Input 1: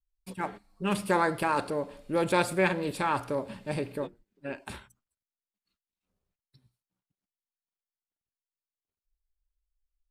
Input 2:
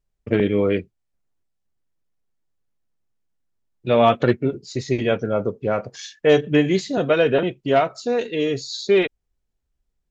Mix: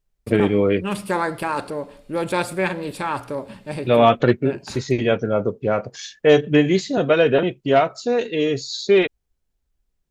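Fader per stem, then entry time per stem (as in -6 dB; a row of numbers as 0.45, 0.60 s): +3.0, +1.5 dB; 0.00, 0.00 s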